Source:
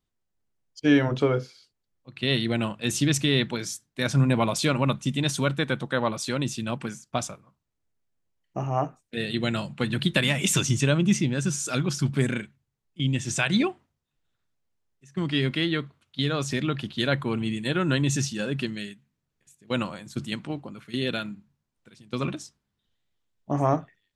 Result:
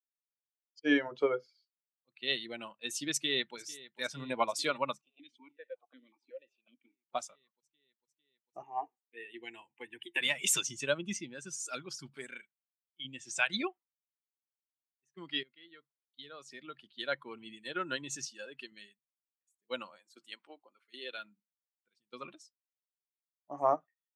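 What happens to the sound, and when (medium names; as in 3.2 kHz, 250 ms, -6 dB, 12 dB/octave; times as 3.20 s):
3.12–3.55 s: echo throw 450 ms, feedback 80%, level -11 dB
5.01–7.07 s: stepped vowel filter 5.4 Hz
8.62–10.21 s: static phaser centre 880 Hz, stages 8
12.15–13.05 s: bass shelf 420 Hz -6.5 dB
15.43–17.52 s: fade in, from -17.5 dB
18.25–18.72 s: bass shelf 190 Hz -9.5 dB
19.98–21.18 s: high-pass 330 Hz
whole clip: expander on every frequency bin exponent 1.5; high-pass 430 Hz 12 dB/octave; upward expansion 1.5:1, over -35 dBFS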